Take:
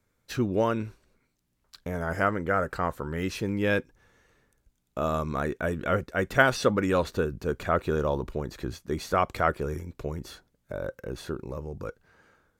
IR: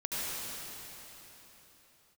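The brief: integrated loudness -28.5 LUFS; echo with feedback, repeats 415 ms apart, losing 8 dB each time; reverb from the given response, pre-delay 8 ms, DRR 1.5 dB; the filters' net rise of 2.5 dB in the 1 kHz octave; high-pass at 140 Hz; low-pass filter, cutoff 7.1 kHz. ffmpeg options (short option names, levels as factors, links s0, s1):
-filter_complex "[0:a]highpass=140,lowpass=7100,equalizer=f=1000:t=o:g=3.5,aecho=1:1:415|830|1245|1660|2075:0.398|0.159|0.0637|0.0255|0.0102,asplit=2[s0][s1];[1:a]atrim=start_sample=2205,adelay=8[s2];[s1][s2]afir=irnorm=-1:irlink=0,volume=0.398[s3];[s0][s3]amix=inputs=2:normalize=0,volume=0.708"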